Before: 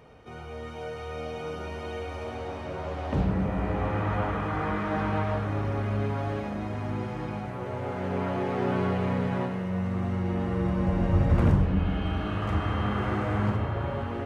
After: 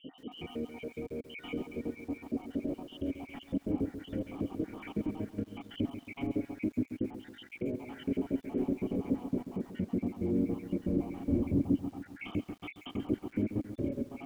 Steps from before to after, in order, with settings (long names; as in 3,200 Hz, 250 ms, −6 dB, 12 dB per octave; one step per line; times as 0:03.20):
time-frequency cells dropped at random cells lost 76%
dynamic equaliser 170 Hz, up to −8 dB, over −45 dBFS, Q 1.6
mid-hump overdrive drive 35 dB, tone 3,500 Hz, clips at −10.5 dBFS
formant resonators in series i
treble cut that deepens with the level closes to 920 Hz, closed at −35 dBFS
feedback echo at a low word length 136 ms, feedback 55%, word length 9 bits, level −11 dB